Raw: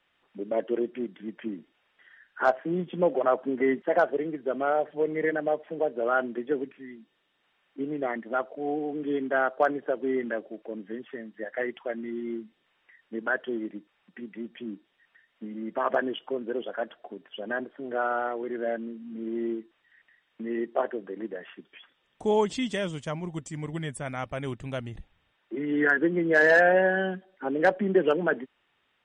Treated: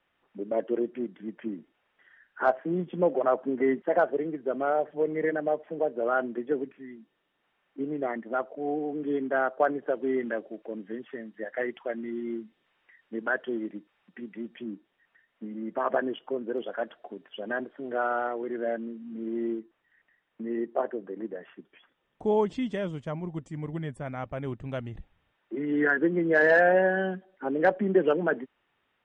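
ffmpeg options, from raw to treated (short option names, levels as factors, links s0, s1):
-af "asetnsamples=n=441:p=0,asendcmd='9.87 lowpass f 3600;14.64 lowpass f 1700;16.58 lowpass f 3900;18.27 lowpass f 2400;19.59 lowpass f 1100;24.69 lowpass f 2000',lowpass=f=1700:p=1"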